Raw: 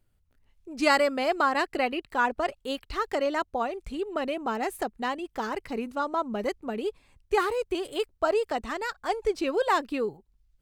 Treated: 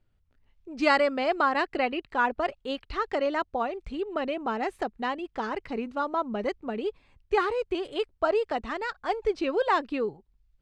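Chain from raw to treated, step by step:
low-pass filter 4,300 Hz 12 dB per octave

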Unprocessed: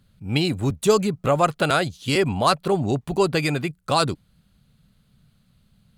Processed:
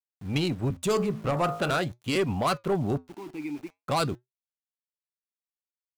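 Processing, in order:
adaptive Wiener filter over 9 samples
0:00.77–0:01.79: hum removal 53.66 Hz, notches 29
soft clipping −16 dBFS, distortion −13 dB
0:02.97–0:03.80: formant filter u
centre clipping without the shift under −42.5 dBFS
flanger 0.45 Hz, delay 3.3 ms, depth 3.5 ms, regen −83%
level +1.5 dB

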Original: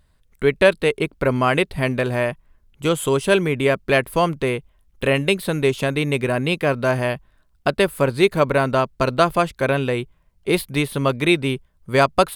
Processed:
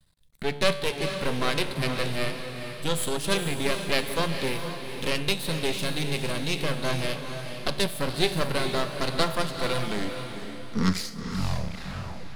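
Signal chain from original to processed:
turntable brake at the end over 2.86 s
high-shelf EQ 3,700 Hz +6.5 dB
tuned comb filter 72 Hz, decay 0.9 s, harmonics all, mix 60%
convolution reverb RT60 0.30 s, pre-delay 4 ms, DRR 14 dB
half-wave rectification
graphic EQ with 15 bands 160 Hz +11 dB, 4,000 Hz +9 dB, 10,000 Hz +4 dB
feedback delay with all-pass diffusion 458 ms, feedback 40%, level −7 dB

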